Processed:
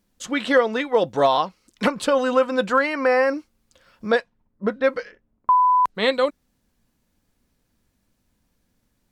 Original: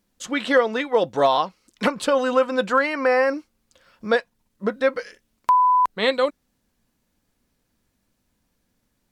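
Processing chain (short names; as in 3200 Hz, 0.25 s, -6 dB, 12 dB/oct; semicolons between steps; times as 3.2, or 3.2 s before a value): low shelf 170 Hz +4 dB; 4.12–5.95 low-pass opened by the level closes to 720 Hz, open at -15.5 dBFS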